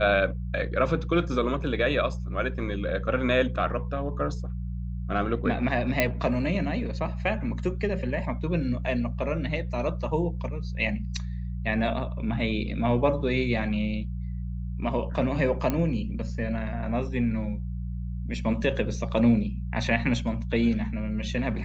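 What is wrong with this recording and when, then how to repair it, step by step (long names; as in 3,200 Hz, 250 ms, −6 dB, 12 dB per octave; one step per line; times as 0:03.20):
mains hum 60 Hz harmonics 3 −32 dBFS
0:06.00: click −7 dBFS
0:15.70: click −13 dBFS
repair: click removal
hum removal 60 Hz, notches 3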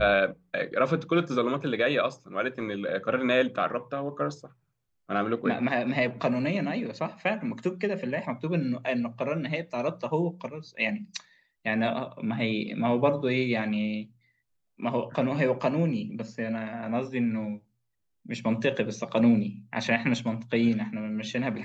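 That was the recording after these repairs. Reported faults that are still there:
none of them is left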